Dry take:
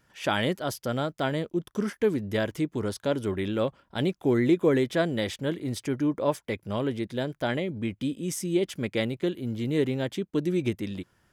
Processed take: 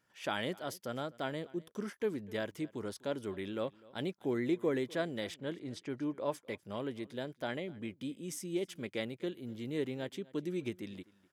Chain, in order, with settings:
0:05.34–0:06.40: low-pass that shuts in the quiet parts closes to 2,200 Hz, open at −22 dBFS
high-pass filter 190 Hz 6 dB per octave
on a send: single-tap delay 250 ms −22.5 dB
on the sum: level −9 dB

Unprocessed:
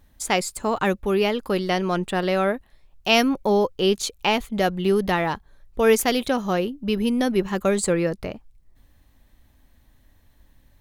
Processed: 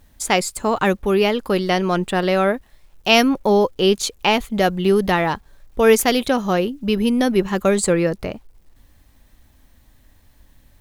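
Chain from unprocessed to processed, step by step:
bit reduction 11 bits
level +4 dB

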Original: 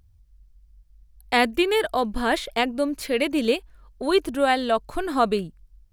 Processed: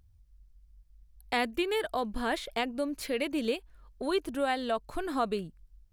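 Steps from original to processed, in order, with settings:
downward compressor 1.5 to 1, threshold −29 dBFS, peak gain reduction 5.5 dB
level −4.5 dB

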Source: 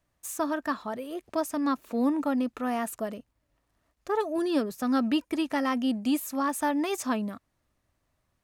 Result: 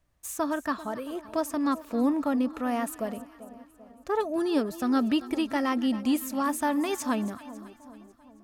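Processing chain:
low-shelf EQ 74 Hz +10 dB
on a send: echo with a time of its own for lows and highs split 1,000 Hz, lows 391 ms, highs 274 ms, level −15.5 dB

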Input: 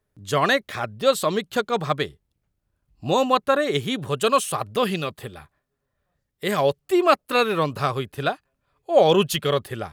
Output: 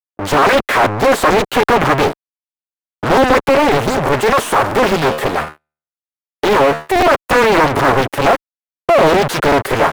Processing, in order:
comb filter 7.3 ms, depth 43%
fuzz pedal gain 36 dB, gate −44 dBFS
noise gate −28 dBFS, range −24 dB
high-shelf EQ 4,200 Hz +6 dB
leveller curve on the samples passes 1
0:03.49–0:06.96: tuned comb filter 76 Hz, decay 0.48 s, harmonics all, mix 60%
leveller curve on the samples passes 5
three-way crossover with the lows and the highs turned down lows −13 dB, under 280 Hz, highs −17 dB, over 2,000 Hz
regular buffer underruns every 0.77 s, samples 512, repeat, from 0:00.84
highs frequency-modulated by the lows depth 0.99 ms
level −1.5 dB

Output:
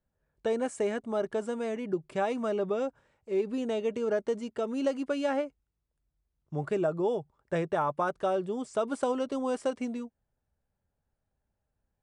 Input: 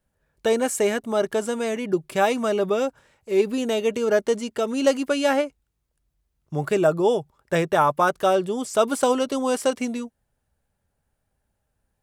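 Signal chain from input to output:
Butterworth low-pass 9,900 Hz 72 dB per octave
high-shelf EQ 2,300 Hz −10 dB
downward compressor, threshold −17 dBFS, peak gain reduction 4 dB
level −6.5 dB

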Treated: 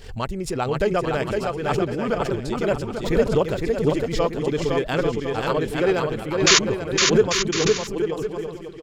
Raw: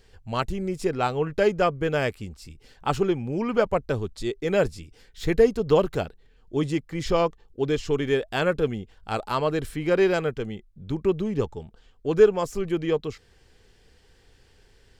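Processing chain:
sound drawn into the spectrogram noise, 0:10.99–0:11.19, 970–7,200 Hz −13 dBFS
tempo change 1.7×
on a send: bouncing-ball delay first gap 510 ms, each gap 0.65×, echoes 5
on the sum: background raised ahead of every attack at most 88 dB per second

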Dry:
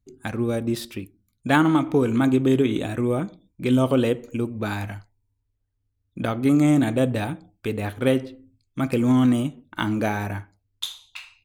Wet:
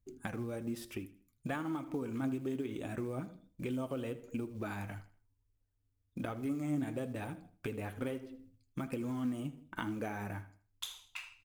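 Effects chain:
parametric band 4,000 Hz −8.5 dB 0.47 octaves
downward compressor 4 to 1, threshold −33 dBFS, peak gain reduction 16 dB
floating-point word with a short mantissa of 4 bits
flanger 1.1 Hz, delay 1.7 ms, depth 6.1 ms, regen +56%
on a send: repeating echo 80 ms, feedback 34%, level −17.5 dB

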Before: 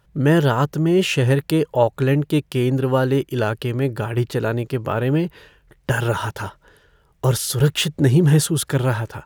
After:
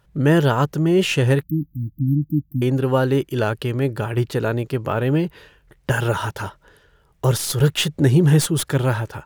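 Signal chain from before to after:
stylus tracing distortion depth 0.035 ms
0:01.43–0:02.62: linear-phase brick-wall band-stop 320–12,000 Hz

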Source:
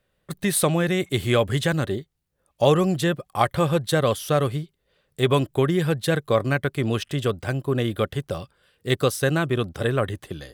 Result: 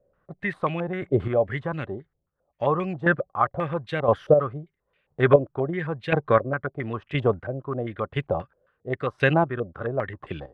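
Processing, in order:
square-wave tremolo 0.98 Hz, depth 60%, duty 25%
low-pass on a step sequencer 7.5 Hz 560–2,400 Hz

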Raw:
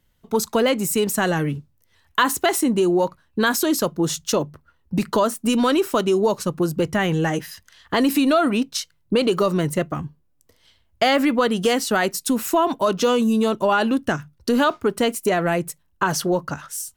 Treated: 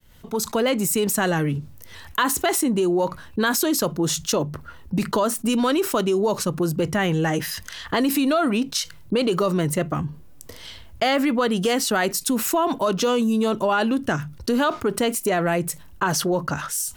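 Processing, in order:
fade in at the beginning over 0.67 s
envelope flattener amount 50%
level −3.5 dB

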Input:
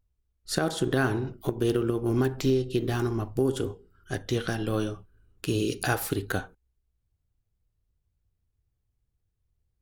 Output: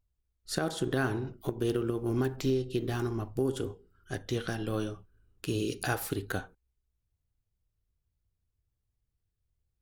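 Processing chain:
0:01.84–0:02.36: bit-depth reduction 12 bits, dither none
level −4.5 dB

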